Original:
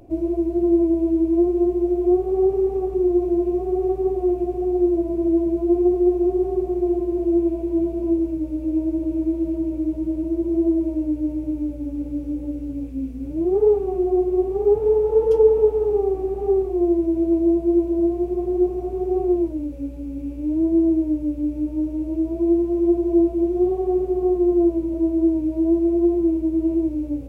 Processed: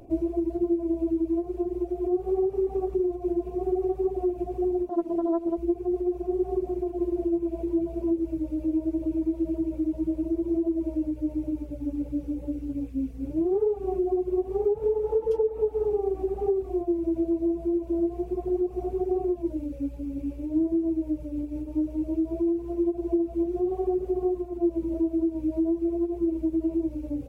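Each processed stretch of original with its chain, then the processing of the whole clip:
4.89–5.58 s: resonant low shelf 160 Hz -11 dB, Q 1.5 + loudspeaker Doppler distortion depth 0.4 ms
whole clip: compression 6:1, threshold -20 dBFS; hum notches 50/100/150/200/250/300/350 Hz; reverb removal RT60 0.87 s

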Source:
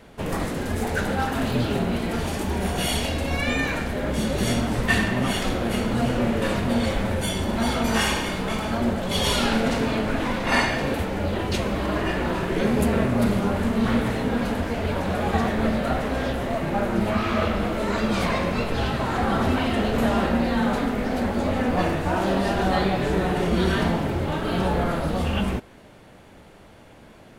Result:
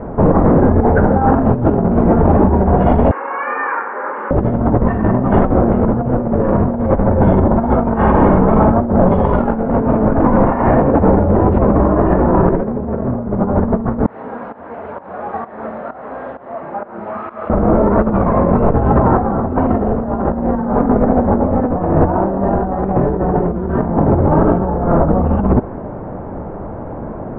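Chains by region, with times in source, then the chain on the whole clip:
3.11–4.31 s: high-pass 630 Hz 24 dB/octave + static phaser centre 1.6 kHz, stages 4
14.06–17.50 s: volume shaper 130 bpm, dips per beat 1, -16 dB, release 263 ms + differentiator
whole clip: low-pass 1.1 kHz 24 dB/octave; compressor with a negative ratio -28 dBFS, ratio -0.5; loudness maximiser +18.5 dB; trim -1 dB

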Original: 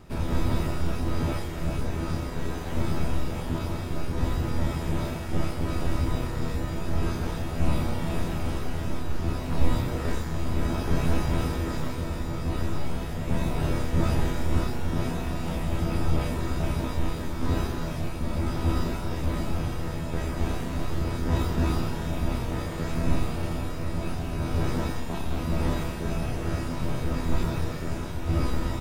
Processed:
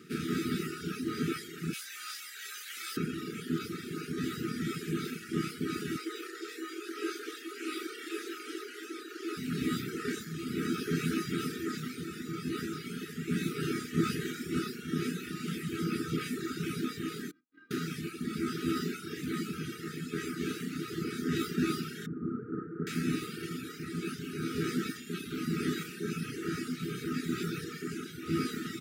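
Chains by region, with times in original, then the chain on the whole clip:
1.73–2.97 s: high-pass 1.4 kHz + tilt EQ +2 dB/octave
5.98–9.37 s: self-modulated delay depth 0.054 ms + steep high-pass 300 Hz 72 dB/octave
17.31–17.71 s: Bessel low-pass 1.8 kHz + inharmonic resonator 290 Hz, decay 0.28 s, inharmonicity 0.008 + valve stage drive 36 dB, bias 0.2
22.06–22.87 s: one-bit delta coder 64 kbps, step -29 dBFS + steep low-pass 1.3 kHz
whole clip: reverb removal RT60 1.9 s; FFT band-reject 470–1200 Hz; high-pass 170 Hz 24 dB/octave; trim +2 dB

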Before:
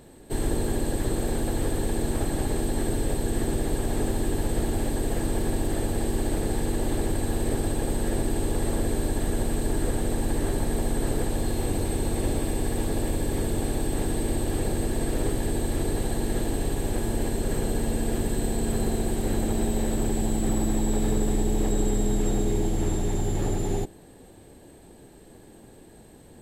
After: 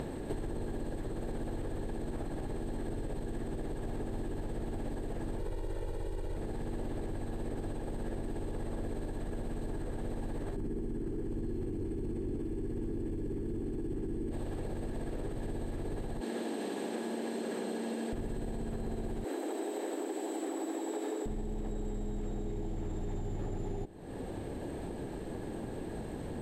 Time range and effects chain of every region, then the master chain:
5.39–6.37 s: hum notches 50/100/150/200/250/300/350/400/450 Hz + comb 2.1 ms, depth 75%
10.56–14.31 s: resonant low shelf 470 Hz +7.5 dB, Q 3 + band-stop 3.8 kHz, Q 6.2
16.21–18.13 s: Chebyshev high-pass 210 Hz, order 4 + peaking EQ 4.5 kHz +6.5 dB 2.6 oct
19.24–21.26 s: steep high-pass 260 Hz 96 dB/octave + treble shelf 5.1 kHz +4.5 dB
whole clip: low-pass 1.9 kHz 6 dB/octave; peak limiter -21.5 dBFS; compression 6:1, threshold -55 dBFS; trim +18 dB

